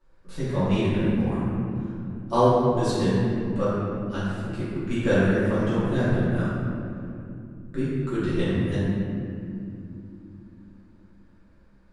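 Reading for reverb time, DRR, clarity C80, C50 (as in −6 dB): 2.8 s, −13.5 dB, −2.0 dB, −4.5 dB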